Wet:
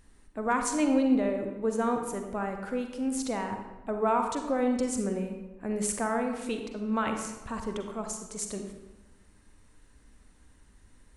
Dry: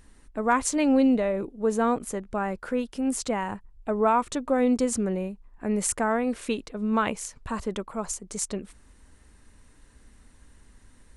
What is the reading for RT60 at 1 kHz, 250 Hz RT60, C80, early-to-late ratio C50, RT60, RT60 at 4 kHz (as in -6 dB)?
1.1 s, 1.3 s, 7.5 dB, 5.5 dB, 1.1 s, 0.75 s